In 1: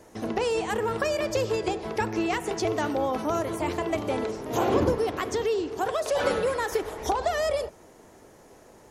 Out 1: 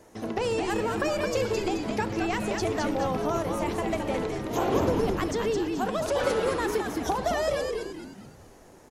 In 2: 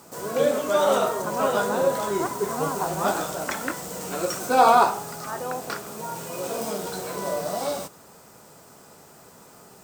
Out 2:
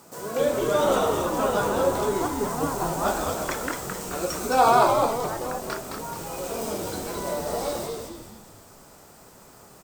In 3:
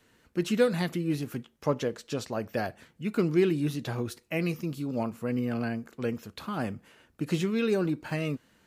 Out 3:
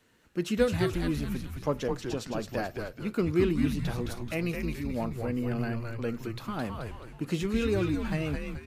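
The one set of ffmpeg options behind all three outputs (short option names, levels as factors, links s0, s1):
-filter_complex "[0:a]asplit=6[s0][s1][s2][s3][s4][s5];[s1]adelay=215,afreqshift=-120,volume=0.631[s6];[s2]adelay=430,afreqshift=-240,volume=0.272[s7];[s3]adelay=645,afreqshift=-360,volume=0.116[s8];[s4]adelay=860,afreqshift=-480,volume=0.0501[s9];[s5]adelay=1075,afreqshift=-600,volume=0.0216[s10];[s0][s6][s7][s8][s9][s10]amix=inputs=6:normalize=0,volume=0.794"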